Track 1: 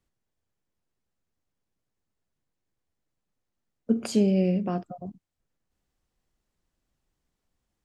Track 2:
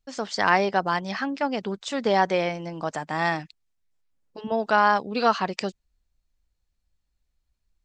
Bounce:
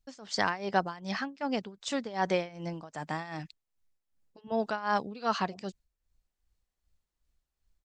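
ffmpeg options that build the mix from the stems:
-filter_complex "[0:a]lowshelf=f=310:g=-11.5,adelay=500,volume=0.447,asplit=3[s0][s1][s2];[s0]atrim=end=4.38,asetpts=PTS-STARTPTS,afade=t=out:st=4.376:d=0.004:c=hsin[s3];[s1]atrim=start=4.38:end=5.44,asetpts=PTS-STARTPTS,volume=0[s4];[s2]atrim=start=5.44,asetpts=PTS-STARTPTS,afade=t=in:d=0.004:c=hsin[s5];[s3][s4][s5]concat=n=3:v=0:a=1[s6];[1:a]tremolo=f=2.6:d=0.89,bass=f=250:g=4,treble=f=4000:g=3,volume=0.668[s7];[s6][s7]amix=inputs=2:normalize=0"

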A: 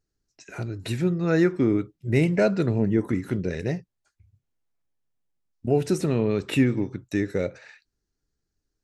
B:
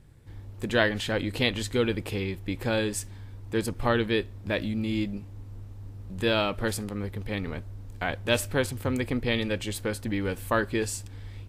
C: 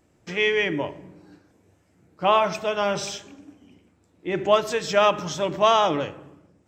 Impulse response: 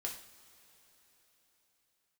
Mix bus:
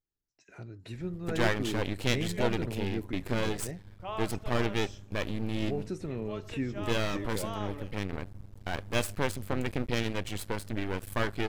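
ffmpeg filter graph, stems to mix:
-filter_complex "[0:a]highshelf=f=8500:g=-12,volume=0.224,asplit=2[s0][s1];[1:a]agate=range=0.0224:threshold=0.0141:ratio=3:detection=peak,aeval=exprs='max(val(0),0)':c=same,adelay=650,volume=0.944[s2];[2:a]adelay=1800,volume=0.106[s3];[s1]apad=whole_len=373648[s4];[s3][s4]sidechaincompress=threshold=0.0178:ratio=8:attack=6.4:release=409[s5];[s0][s2][s5]amix=inputs=3:normalize=0"

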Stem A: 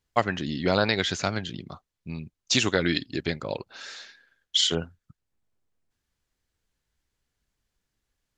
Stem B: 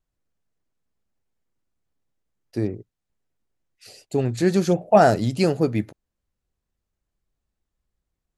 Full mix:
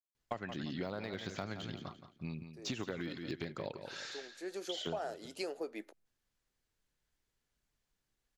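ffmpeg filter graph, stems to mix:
-filter_complex "[0:a]equalizer=f=75:t=o:w=0.44:g=-9,deesser=1,adelay=150,volume=0.596,asplit=2[s0][s1];[s1]volume=0.266[s2];[1:a]highpass=f=360:w=0.5412,highpass=f=360:w=1.3066,volume=0.299,afade=t=in:st=4.33:d=0.7:silence=0.251189[s3];[s2]aecho=0:1:172|344|516|688:1|0.29|0.0841|0.0244[s4];[s0][s3][s4]amix=inputs=3:normalize=0,acompressor=threshold=0.0158:ratio=8"

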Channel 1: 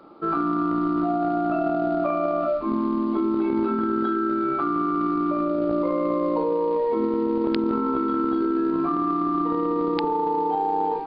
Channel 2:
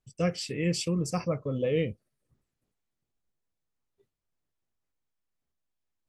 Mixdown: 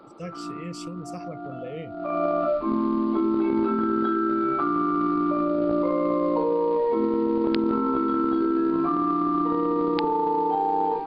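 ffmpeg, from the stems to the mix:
-filter_complex "[0:a]volume=1[s0];[1:a]volume=0.355,asplit=2[s1][s2];[s2]apad=whole_len=487932[s3];[s0][s3]sidechaincompress=threshold=0.00224:ratio=5:attack=22:release=249[s4];[s4][s1]amix=inputs=2:normalize=0"

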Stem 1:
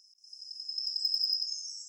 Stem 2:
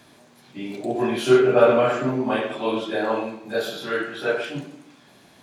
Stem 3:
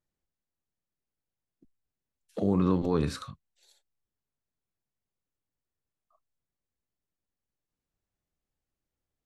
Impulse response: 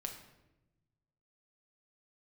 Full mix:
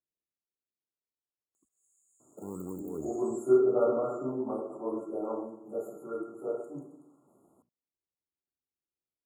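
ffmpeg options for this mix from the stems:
-filter_complex "[0:a]adelay=1550,volume=0.708,asplit=2[s0][s1];[s1]volume=0.355[s2];[1:a]bandreject=f=60:t=h:w=6,bandreject=f=120:t=h:w=6,bandreject=f=180:t=h:w=6,bandreject=f=240:t=h:w=6,adelay=2200,volume=0.141,asplit=2[s3][s4];[s4]volume=0.224[s5];[2:a]acrusher=samples=34:mix=1:aa=0.000001:lfo=1:lforange=34:lforate=0.6,volume=0.106[s6];[3:a]atrim=start_sample=2205[s7];[s2][s5]amix=inputs=2:normalize=0[s8];[s8][s7]afir=irnorm=-1:irlink=0[s9];[s0][s3][s6][s9]amix=inputs=4:normalize=0,afftfilt=real='re*(1-between(b*sr/4096,1400,6600))':imag='im*(1-between(b*sr/4096,1400,6600))':win_size=4096:overlap=0.75,highpass=40,equalizer=f=360:t=o:w=1.2:g=9"

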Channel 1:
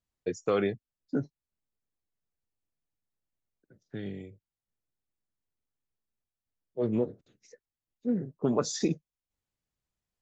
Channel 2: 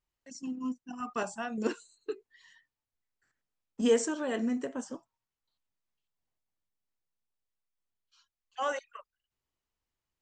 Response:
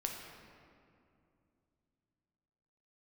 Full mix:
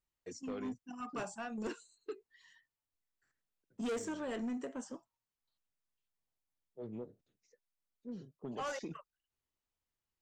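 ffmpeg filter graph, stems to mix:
-filter_complex "[0:a]volume=0.168[s0];[1:a]deesser=0.8,volume=0.596[s1];[s0][s1]amix=inputs=2:normalize=0,asoftclip=type=tanh:threshold=0.0211"

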